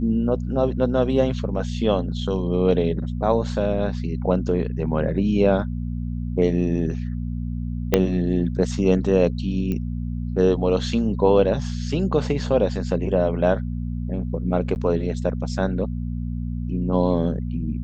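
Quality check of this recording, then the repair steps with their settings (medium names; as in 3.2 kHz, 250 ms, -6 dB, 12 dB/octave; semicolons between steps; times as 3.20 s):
hum 60 Hz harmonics 4 -27 dBFS
7.94 s: pop -3 dBFS
9.72 s: pop -16 dBFS
14.75–14.76 s: dropout 9.9 ms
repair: de-click; de-hum 60 Hz, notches 4; interpolate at 14.75 s, 9.9 ms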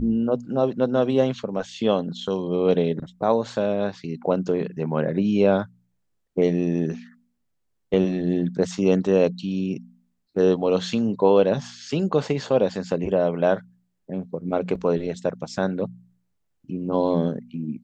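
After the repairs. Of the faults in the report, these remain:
7.94 s: pop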